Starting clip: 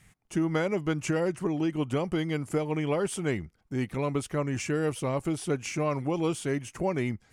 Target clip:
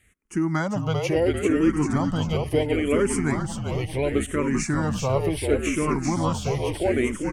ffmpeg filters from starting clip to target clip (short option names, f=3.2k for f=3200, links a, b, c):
-filter_complex "[0:a]dynaudnorm=f=260:g=3:m=7dB,asplit=9[a][b][c][d][e][f][g][h][i];[b]adelay=394,afreqshift=-47,volume=-4dB[j];[c]adelay=788,afreqshift=-94,volume=-8.7dB[k];[d]adelay=1182,afreqshift=-141,volume=-13.5dB[l];[e]adelay=1576,afreqshift=-188,volume=-18.2dB[m];[f]adelay=1970,afreqshift=-235,volume=-22.9dB[n];[g]adelay=2364,afreqshift=-282,volume=-27.7dB[o];[h]adelay=2758,afreqshift=-329,volume=-32.4dB[p];[i]adelay=3152,afreqshift=-376,volume=-37.1dB[q];[a][j][k][l][m][n][o][p][q]amix=inputs=9:normalize=0,asplit=2[r][s];[s]afreqshift=-0.72[t];[r][t]amix=inputs=2:normalize=1"